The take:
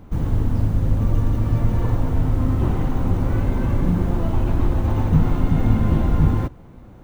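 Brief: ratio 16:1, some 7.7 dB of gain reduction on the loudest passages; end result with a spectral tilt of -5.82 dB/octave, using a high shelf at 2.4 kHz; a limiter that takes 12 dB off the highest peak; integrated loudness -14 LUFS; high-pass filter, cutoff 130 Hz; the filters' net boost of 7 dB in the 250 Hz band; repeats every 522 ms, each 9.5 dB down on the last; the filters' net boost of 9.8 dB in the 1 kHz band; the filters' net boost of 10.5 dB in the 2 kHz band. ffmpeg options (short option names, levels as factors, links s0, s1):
-af "highpass=130,equalizer=f=250:t=o:g=9,equalizer=f=1000:t=o:g=8.5,equalizer=f=2000:t=o:g=6.5,highshelf=f=2400:g=8,acompressor=threshold=0.141:ratio=16,alimiter=limit=0.0891:level=0:latency=1,aecho=1:1:522|1044|1566|2088:0.335|0.111|0.0365|0.012,volume=5.31"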